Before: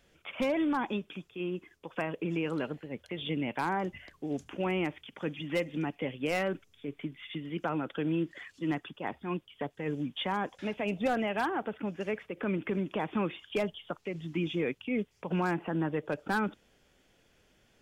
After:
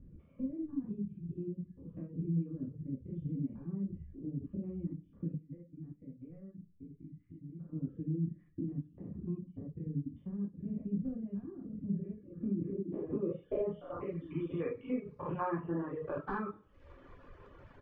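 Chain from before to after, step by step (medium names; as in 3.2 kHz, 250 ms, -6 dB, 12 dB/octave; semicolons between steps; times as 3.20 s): spectrogram pixelated in time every 100 ms; hum notches 60/120/180/240/300/360/420/480 Hz; comb 1.7 ms, depth 39%; crackle 310 per s -53 dBFS; peaking EQ 710 Hz -12 dB 0.8 oct; compression 2.5:1, threshold -57 dBFS, peak gain reduction 17 dB; 5.34–7.73 s: four-pole ladder low-pass 2.4 kHz, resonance 50%; reverberation RT60 0.55 s, pre-delay 3 ms, DRR -1 dB; low-pass sweep 200 Hz -> 1 kHz, 12.37–14.18 s; reverb removal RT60 0.94 s; trim +13 dB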